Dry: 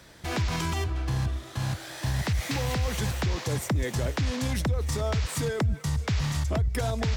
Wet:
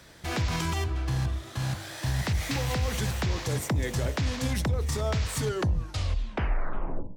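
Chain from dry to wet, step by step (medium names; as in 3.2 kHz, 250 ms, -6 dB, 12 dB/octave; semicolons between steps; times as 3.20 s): tape stop on the ending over 1.84 s; de-hum 49.82 Hz, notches 21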